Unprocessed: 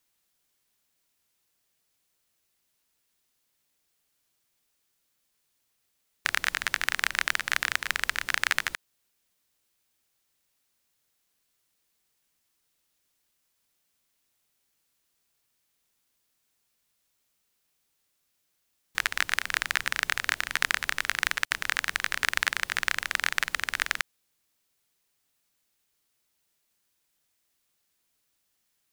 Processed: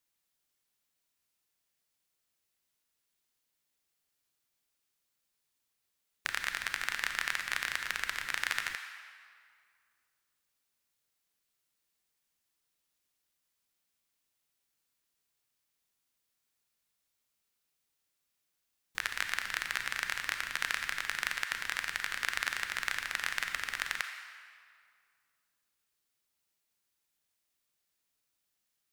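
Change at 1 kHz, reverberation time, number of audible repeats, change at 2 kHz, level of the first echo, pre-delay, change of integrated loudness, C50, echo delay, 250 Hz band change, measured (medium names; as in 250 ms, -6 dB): -6.5 dB, 2.2 s, no echo, -6.5 dB, no echo, 30 ms, -6.5 dB, 6.5 dB, no echo, -7.5 dB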